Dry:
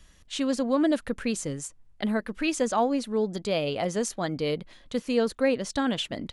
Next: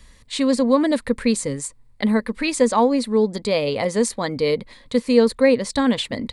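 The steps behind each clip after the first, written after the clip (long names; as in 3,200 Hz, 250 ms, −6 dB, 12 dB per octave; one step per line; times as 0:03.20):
EQ curve with evenly spaced ripples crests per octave 0.96, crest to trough 8 dB
level +6 dB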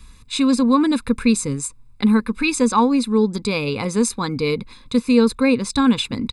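comb filter 0.8 ms, depth 84%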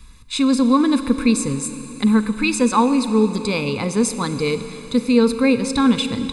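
four-comb reverb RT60 3.9 s, combs from 33 ms, DRR 10 dB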